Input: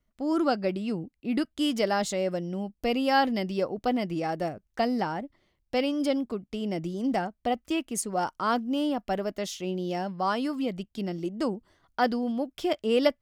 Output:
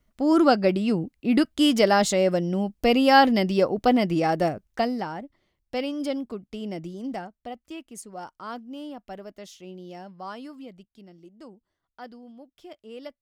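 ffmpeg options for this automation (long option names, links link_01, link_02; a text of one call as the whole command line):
ffmpeg -i in.wav -af "volume=7dB,afade=type=out:start_time=4.5:duration=0.47:silence=0.354813,afade=type=out:start_time=6.66:duration=0.85:silence=0.398107,afade=type=out:start_time=10.37:duration=0.68:silence=0.446684" out.wav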